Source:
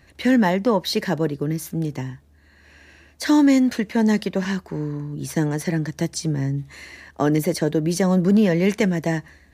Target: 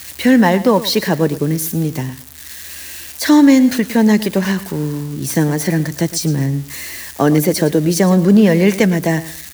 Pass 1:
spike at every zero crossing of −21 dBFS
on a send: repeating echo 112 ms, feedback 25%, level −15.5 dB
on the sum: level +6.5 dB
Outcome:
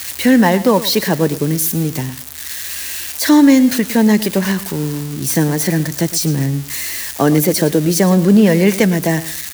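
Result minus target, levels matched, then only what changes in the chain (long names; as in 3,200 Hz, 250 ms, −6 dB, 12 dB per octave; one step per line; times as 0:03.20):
spike at every zero crossing: distortion +6 dB
change: spike at every zero crossing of −27.5 dBFS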